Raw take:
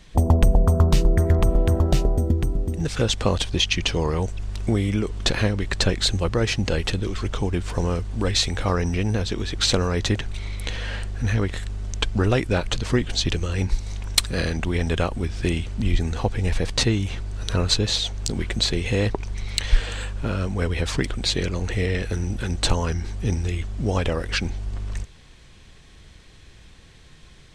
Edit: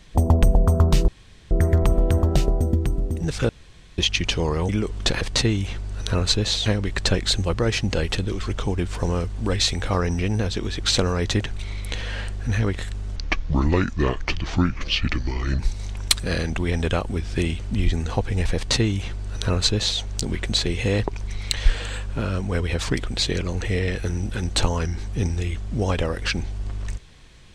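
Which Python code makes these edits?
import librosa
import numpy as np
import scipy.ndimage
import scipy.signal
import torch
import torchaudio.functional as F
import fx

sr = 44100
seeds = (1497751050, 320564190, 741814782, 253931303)

y = fx.edit(x, sr, fx.insert_room_tone(at_s=1.08, length_s=0.43),
    fx.room_tone_fill(start_s=3.06, length_s=0.49),
    fx.cut(start_s=4.26, length_s=0.63),
    fx.speed_span(start_s=11.91, length_s=1.75, speed=0.72),
    fx.duplicate(start_s=16.63, length_s=1.45, to_s=5.41), tone=tone)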